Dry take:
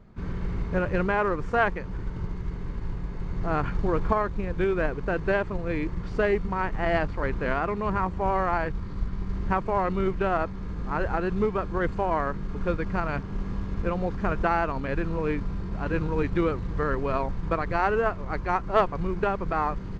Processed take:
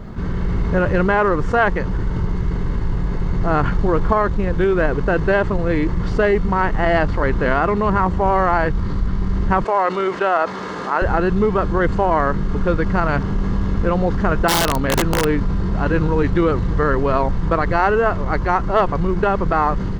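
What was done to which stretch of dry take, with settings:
9.64–11.02 s: high-pass 480 Hz
14.48–15.25 s: integer overflow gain 19.5 dB
whole clip: level rider gain up to 6 dB; band-stop 2.4 kHz, Q 8.4; level flattener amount 50%

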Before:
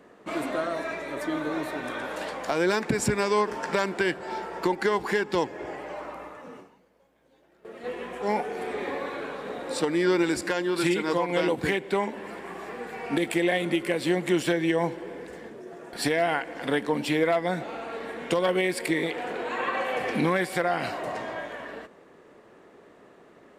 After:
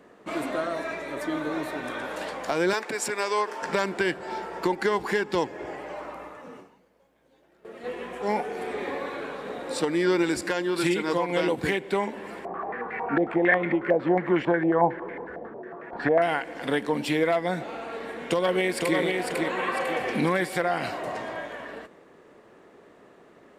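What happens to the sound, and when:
2.73–3.62 s: high-pass 470 Hz
12.45–16.22 s: step-sequenced low-pass 11 Hz 700–2000 Hz
18.01–18.98 s: echo throw 500 ms, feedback 45%, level -3.5 dB

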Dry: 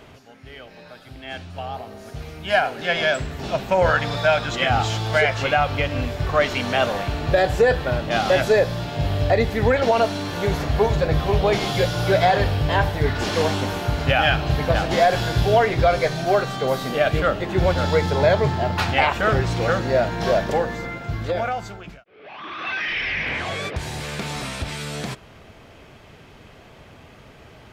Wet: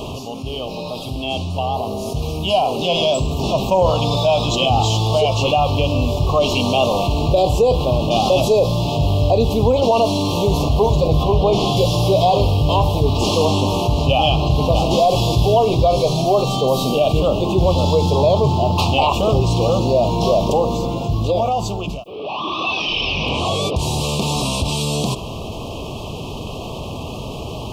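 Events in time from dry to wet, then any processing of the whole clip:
11.23–11.77 s: treble shelf 5.5 kHz -8.5 dB
13.45–14.69 s: treble shelf 11 kHz -7.5 dB
whole clip: elliptic band-stop 1.1–2.7 kHz, stop band 40 dB; level flattener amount 50%; trim +1.5 dB

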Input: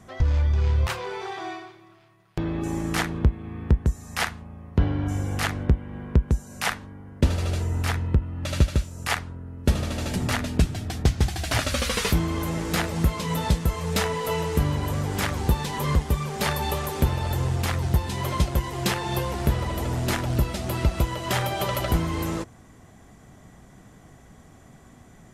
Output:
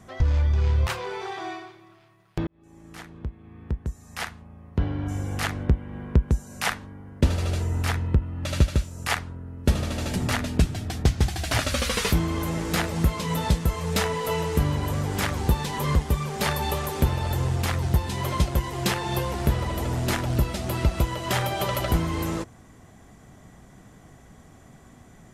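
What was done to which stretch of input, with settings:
2.47–6.01 s: fade in

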